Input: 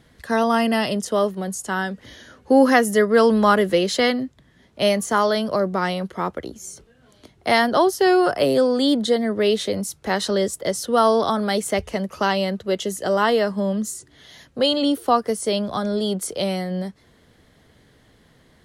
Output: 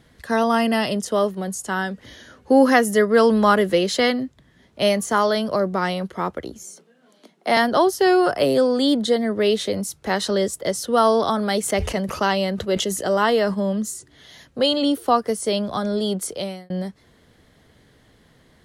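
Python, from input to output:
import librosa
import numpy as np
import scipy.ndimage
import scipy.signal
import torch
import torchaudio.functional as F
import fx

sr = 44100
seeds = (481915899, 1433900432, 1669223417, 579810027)

y = fx.cheby_ripple_highpass(x, sr, hz=160.0, ripple_db=3, at=(6.63, 7.57))
y = fx.sustainer(y, sr, db_per_s=65.0, at=(11.63, 13.53), fade=0.02)
y = fx.edit(y, sr, fx.fade_out_span(start_s=16.26, length_s=0.44), tone=tone)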